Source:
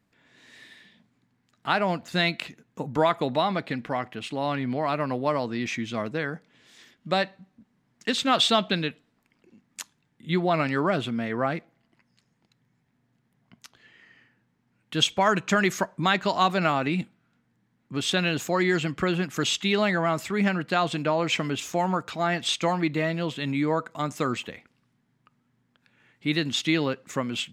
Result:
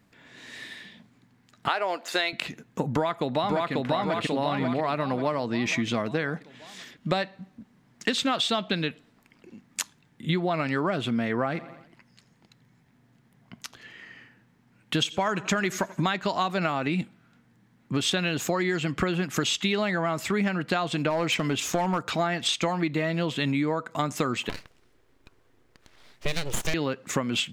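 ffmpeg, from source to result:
-filter_complex "[0:a]asettb=1/sr,asplit=3[a][b][c];[a]atrim=end=1.684[d];[b]atrim=start=1.68:end=2.33,asetpts=PTS-STARTPTS,afade=t=in:d=0.004:c=qsin,afade=t=out:st=0.646:d=0.004:c=qsin,highpass=f=360:w=0.5412,highpass=f=360:w=1.3066[e];[c]atrim=start=2.326[f];[d][e]acrossfade=d=0.004:c1=hsin:c2=qsin[g];[g][f]acrossfade=d=0.004:c1=qsin:c2=hsin,asplit=2[h][i];[i]afade=t=in:st=2.89:d=0.01,afade=t=out:st=3.72:d=0.01,aecho=0:1:540|1080|1620|2160|2700|3240:0.944061|0.424827|0.191172|0.0860275|0.0387124|0.0174206[j];[h][j]amix=inputs=2:normalize=0,asplit=3[k][l][m];[k]afade=t=out:st=11.53:d=0.02[n];[l]aecho=1:1:86|172|258|344:0.0891|0.0455|0.0232|0.0118,afade=t=in:st=11.53:d=0.02,afade=t=out:st=16.02:d=0.02[o];[m]afade=t=in:st=16.02:d=0.02[p];[n][o][p]amix=inputs=3:normalize=0,asplit=3[q][r][s];[q]afade=t=out:st=21.09:d=0.02[t];[r]asoftclip=type=hard:threshold=-19.5dB,afade=t=in:st=21.09:d=0.02,afade=t=out:st=22.03:d=0.02[u];[s]afade=t=in:st=22.03:d=0.02[v];[t][u][v]amix=inputs=3:normalize=0,asettb=1/sr,asplit=3[w][x][y];[w]atrim=end=24.494[z];[x]atrim=start=24.49:end=26.74,asetpts=PTS-STARTPTS,afade=t=in:d=0.004:c=qsin,afade=t=out:st=2.246:d=0.004:c=qsin,aeval=exprs='abs(val(0))':c=same[aa];[y]atrim=start=26.736[ab];[z][aa]acrossfade=d=0.004:c1=hsin:c2=qsin[ac];[ac][ab]acrossfade=d=0.004:c1=qsin:c2=hsin,acompressor=threshold=-31dB:ratio=10,volume=8.5dB"

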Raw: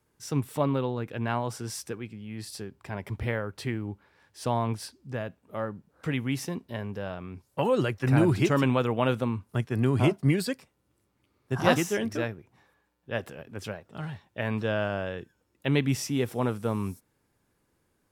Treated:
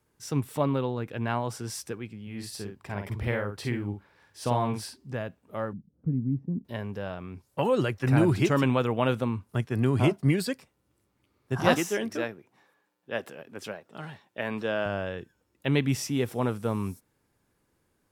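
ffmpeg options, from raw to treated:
-filter_complex "[0:a]asettb=1/sr,asplit=3[a][b][c];[a]atrim=end=2.224[d];[b]atrim=start=2.22:end=5.14,asetpts=PTS-STARTPTS,afade=t=in:d=0.004:c=qsin,afade=t=out:st=2.916:d=0.004:c=qsin,asplit=2[e][f];[f]adelay=49,volume=-5dB[g];[e][g]amix=inputs=2:normalize=0,atrim=end_sample=128772[h];[c]atrim=start=5.136[i];[d][h]acrossfade=d=0.004:c1=hsin:c2=qsin[j];[j][i]acrossfade=d=0.004:c1=qsin:c2=hsin,asettb=1/sr,asplit=3[k][l][m];[k]atrim=end=5.734[n];[l]atrim=start=5.73:end=6.65,asetpts=PTS-STARTPTS,afade=t=in:d=0.004:c=qsin,afade=t=out:st=0.916:d=0.004:c=qsin,lowpass=f=210:t=q:w=1.8[o];[m]atrim=start=6.646[p];[n][o]acrossfade=d=0.004:c1=hsin:c2=qsin[q];[q][p]acrossfade=d=0.004:c1=qsin:c2=hsin,asettb=1/sr,asplit=3[r][s][t];[r]atrim=end=11.744[u];[s]atrim=start=11.74:end=14.86,asetpts=PTS-STARTPTS,afade=t=in:d=0.004:c=qsin,afade=t=out:st=3.116:d=0.004:c=qsin,highpass=210[v];[t]atrim=start=14.856[w];[u][v]acrossfade=d=0.004:c1=hsin:c2=qsin[x];[x][w]acrossfade=d=0.004:c1=qsin:c2=hsin"

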